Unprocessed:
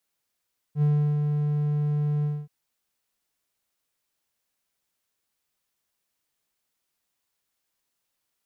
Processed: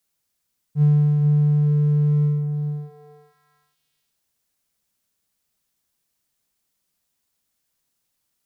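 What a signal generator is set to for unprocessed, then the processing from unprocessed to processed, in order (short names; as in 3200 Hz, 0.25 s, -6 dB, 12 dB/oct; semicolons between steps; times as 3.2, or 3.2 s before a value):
ADSR triangle 148 Hz, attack 71 ms, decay 0.345 s, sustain -4.5 dB, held 1.49 s, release 0.238 s -15.5 dBFS
tone controls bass +7 dB, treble +5 dB; on a send: delay with a stepping band-pass 0.436 s, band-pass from 220 Hz, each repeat 1.4 oct, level -1 dB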